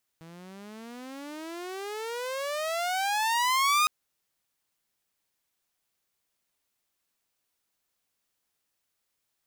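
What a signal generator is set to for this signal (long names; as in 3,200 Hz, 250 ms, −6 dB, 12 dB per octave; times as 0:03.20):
pitch glide with a swell saw, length 3.66 s, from 161 Hz, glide +35.5 semitones, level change +25.5 dB, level −17.5 dB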